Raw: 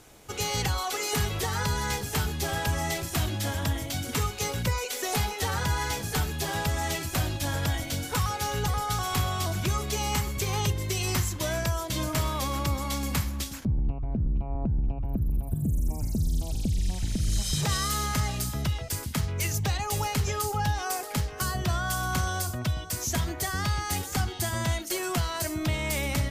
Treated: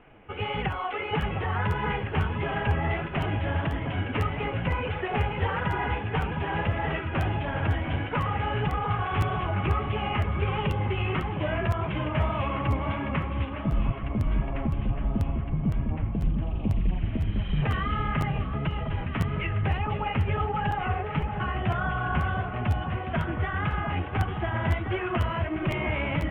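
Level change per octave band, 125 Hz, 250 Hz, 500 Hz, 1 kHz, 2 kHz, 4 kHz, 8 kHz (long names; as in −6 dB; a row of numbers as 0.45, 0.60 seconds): +2.0 dB, +2.5 dB, +2.5 dB, +2.0 dB, +1.5 dB, −7.0 dB, below −30 dB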